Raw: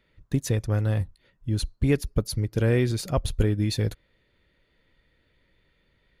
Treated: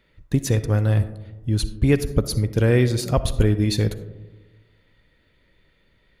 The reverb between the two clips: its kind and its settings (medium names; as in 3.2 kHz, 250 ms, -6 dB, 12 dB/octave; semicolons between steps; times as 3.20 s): algorithmic reverb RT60 1.2 s, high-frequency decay 0.25×, pre-delay 20 ms, DRR 12.5 dB; trim +4.5 dB